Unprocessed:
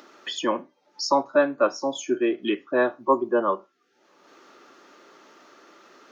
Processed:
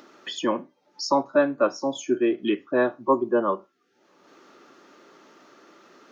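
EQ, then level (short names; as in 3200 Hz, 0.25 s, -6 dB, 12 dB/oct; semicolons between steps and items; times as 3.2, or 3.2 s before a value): low shelf 230 Hz +10 dB; -2.0 dB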